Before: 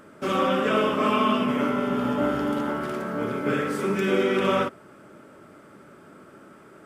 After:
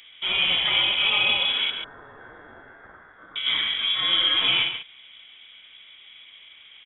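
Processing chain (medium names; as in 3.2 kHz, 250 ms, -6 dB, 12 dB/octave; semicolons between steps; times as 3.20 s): 1.70–3.36 s: elliptic high-pass 2 kHz, stop band 40 dB; delay 139 ms -9 dB; frequency inversion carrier 3.6 kHz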